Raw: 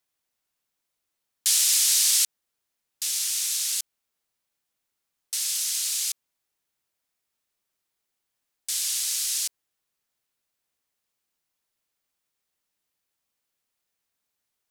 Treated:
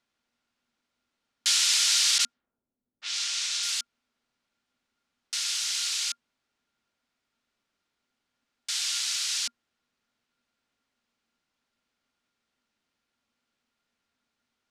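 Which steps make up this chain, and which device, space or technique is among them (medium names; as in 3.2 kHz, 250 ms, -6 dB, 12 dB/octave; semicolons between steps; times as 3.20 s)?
2.18–3.63 s: level-controlled noise filter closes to 370 Hz, open at -21.5 dBFS; inside a cardboard box (low-pass 4.6 kHz 12 dB/octave; small resonant body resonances 240/1400 Hz, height 13 dB, ringing for 95 ms); trim +5 dB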